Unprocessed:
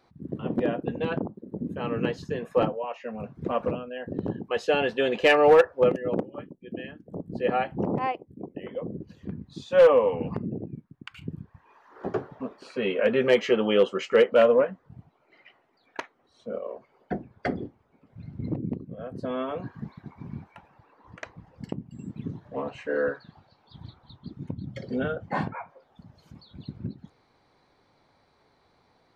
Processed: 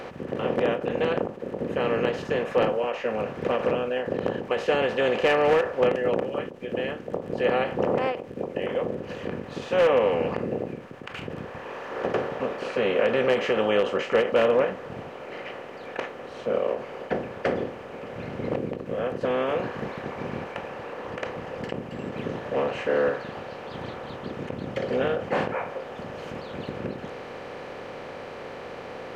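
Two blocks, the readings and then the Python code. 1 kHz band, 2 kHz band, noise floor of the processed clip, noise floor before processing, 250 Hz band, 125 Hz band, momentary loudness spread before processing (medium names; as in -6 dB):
+1.5 dB, +2.0 dB, -40 dBFS, -66 dBFS, 0.0 dB, -0.5 dB, 21 LU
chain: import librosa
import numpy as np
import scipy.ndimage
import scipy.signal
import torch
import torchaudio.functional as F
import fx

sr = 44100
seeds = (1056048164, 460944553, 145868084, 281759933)

y = fx.bin_compress(x, sr, power=0.4)
y = fx.end_taper(y, sr, db_per_s=130.0)
y = y * 10.0 ** (-6.5 / 20.0)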